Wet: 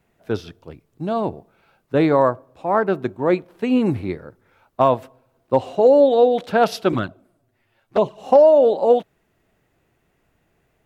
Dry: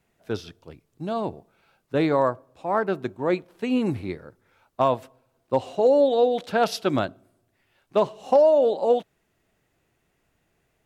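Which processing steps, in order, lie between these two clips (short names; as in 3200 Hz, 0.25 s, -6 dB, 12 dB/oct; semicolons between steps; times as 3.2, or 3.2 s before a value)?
bell 7200 Hz -6 dB 2.6 oct; 6.92–8.18 envelope flanger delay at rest 9.1 ms, full sweep at -17 dBFS; gain +5.5 dB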